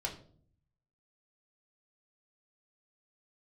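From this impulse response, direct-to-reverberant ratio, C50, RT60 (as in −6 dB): −1.5 dB, 10.5 dB, 0.50 s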